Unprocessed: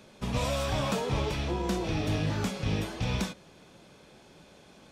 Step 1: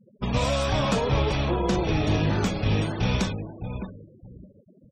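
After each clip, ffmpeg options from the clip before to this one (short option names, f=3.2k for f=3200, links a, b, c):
-filter_complex "[0:a]aeval=exprs='0.126*(cos(1*acos(clip(val(0)/0.126,-1,1)))-cos(1*PI/2))+0.00282*(cos(6*acos(clip(val(0)/0.126,-1,1)))-cos(6*PI/2))+0.000891*(cos(7*acos(clip(val(0)/0.126,-1,1)))-cos(7*PI/2))':c=same,asplit=2[a][b];[b]adelay=610,lowpass=f=1.8k:p=1,volume=-8dB,asplit=2[c][d];[d]adelay=610,lowpass=f=1.8k:p=1,volume=0.23,asplit=2[e][f];[f]adelay=610,lowpass=f=1.8k:p=1,volume=0.23[g];[a][c][e][g]amix=inputs=4:normalize=0,afftfilt=real='re*gte(hypot(re,im),0.00891)':imag='im*gte(hypot(re,im),0.00891)':win_size=1024:overlap=0.75,volume=5.5dB"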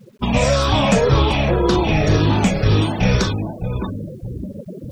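-af "afftfilt=real='re*pow(10,9/40*sin(2*PI*(0.56*log(max(b,1)*sr/1024/100)/log(2)-(-1.9)*(pts-256)/sr)))':imag='im*pow(10,9/40*sin(2*PI*(0.56*log(max(b,1)*sr/1024/100)/log(2)-(-1.9)*(pts-256)/sr)))':win_size=1024:overlap=0.75,areverse,acompressor=mode=upward:threshold=-25dB:ratio=2.5,areverse,acrusher=bits=10:mix=0:aa=0.000001,volume=7dB"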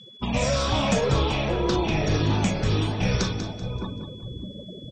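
-filter_complex "[0:a]aeval=exprs='val(0)+0.0112*sin(2*PI*3400*n/s)':c=same,lowpass=f=6.8k:t=q:w=1.5,asplit=2[a][b];[b]aecho=0:1:192|384|576|768:0.316|0.111|0.0387|0.0136[c];[a][c]amix=inputs=2:normalize=0,volume=-8dB"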